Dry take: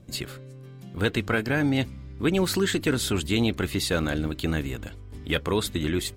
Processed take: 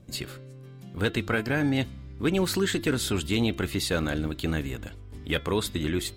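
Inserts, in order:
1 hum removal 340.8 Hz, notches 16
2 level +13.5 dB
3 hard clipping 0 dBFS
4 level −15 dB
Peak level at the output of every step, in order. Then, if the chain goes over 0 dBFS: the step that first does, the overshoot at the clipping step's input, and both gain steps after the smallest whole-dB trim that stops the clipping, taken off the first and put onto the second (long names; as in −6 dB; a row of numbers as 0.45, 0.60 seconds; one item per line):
−10.5, +3.0, 0.0, −15.0 dBFS
step 2, 3.0 dB
step 2 +10.5 dB, step 4 −12 dB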